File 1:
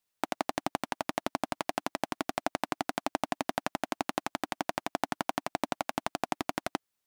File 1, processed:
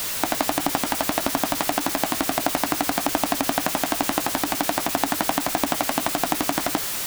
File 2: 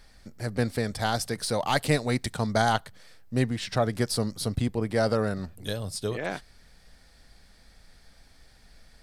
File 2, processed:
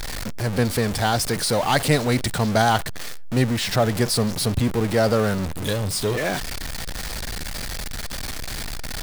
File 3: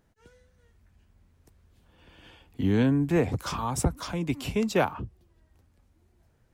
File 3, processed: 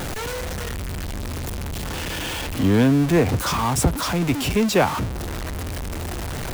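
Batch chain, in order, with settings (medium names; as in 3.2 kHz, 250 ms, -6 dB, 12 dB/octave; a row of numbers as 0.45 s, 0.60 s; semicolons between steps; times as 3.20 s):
jump at every zero crossing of -27 dBFS; normalise loudness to -23 LUFS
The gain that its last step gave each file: +6.0 dB, +3.5 dB, +4.5 dB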